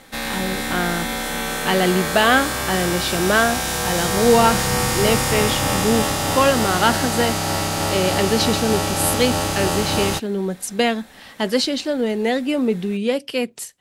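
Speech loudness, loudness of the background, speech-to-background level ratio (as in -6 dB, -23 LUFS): -21.0 LUFS, -21.5 LUFS, 0.5 dB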